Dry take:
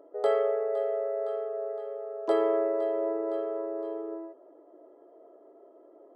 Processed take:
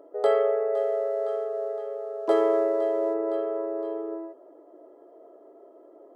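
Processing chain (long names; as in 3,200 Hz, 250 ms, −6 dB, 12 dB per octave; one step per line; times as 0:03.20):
0:00.75–0:03.14: running median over 9 samples
level +3.5 dB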